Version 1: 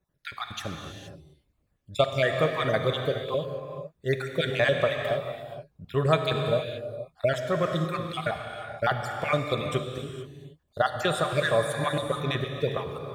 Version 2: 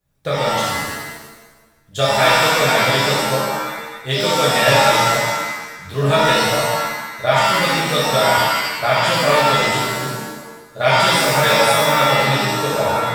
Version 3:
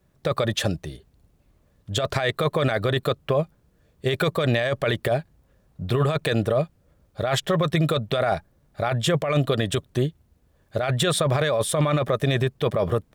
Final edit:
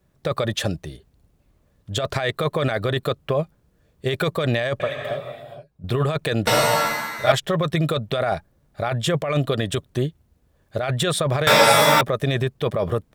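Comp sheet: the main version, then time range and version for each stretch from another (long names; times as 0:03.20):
3
0:04.80–0:05.84: punch in from 1
0:06.47–0:07.32: punch in from 2
0:11.47–0:12.01: punch in from 2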